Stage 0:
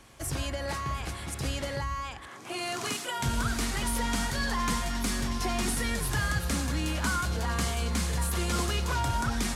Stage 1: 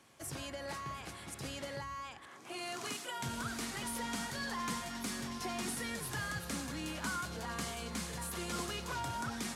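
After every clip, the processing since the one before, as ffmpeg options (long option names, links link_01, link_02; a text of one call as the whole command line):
ffmpeg -i in.wav -af "highpass=130,volume=-8dB" out.wav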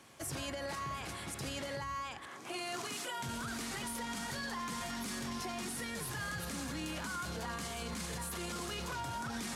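ffmpeg -i in.wav -af "alimiter=level_in=12.5dB:limit=-24dB:level=0:latency=1:release=22,volume=-12.5dB,volume=5dB" out.wav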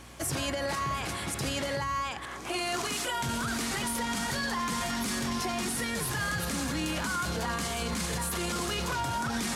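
ffmpeg -i in.wav -af "aeval=exprs='val(0)+0.001*(sin(2*PI*60*n/s)+sin(2*PI*2*60*n/s)/2+sin(2*PI*3*60*n/s)/3+sin(2*PI*4*60*n/s)/4+sin(2*PI*5*60*n/s)/5)':channel_layout=same,volume=8.5dB" out.wav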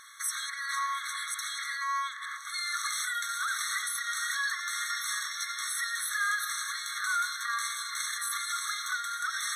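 ffmpeg -i in.wav -af "afftfilt=real='re*eq(mod(floor(b*sr/1024/1100),2),1)':imag='im*eq(mod(floor(b*sr/1024/1100),2),1)':win_size=1024:overlap=0.75,volume=4dB" out.wav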